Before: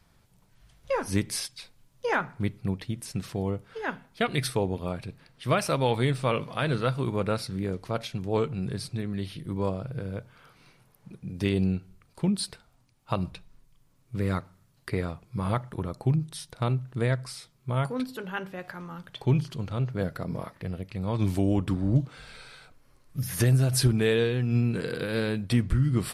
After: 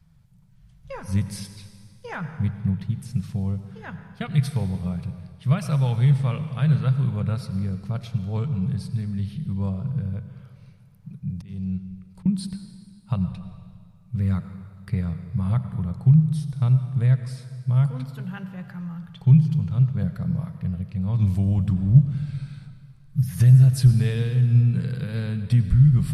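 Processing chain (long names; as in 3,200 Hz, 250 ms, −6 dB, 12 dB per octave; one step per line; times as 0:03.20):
low shelf with overshoot 220 Hz +11 dB, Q 3
0:11.31–0:12.26: volume swells 606 ms
convolution reverb RT60 2.0 s, pre-delay 77 ms, DRR 10 dB
level −7 dB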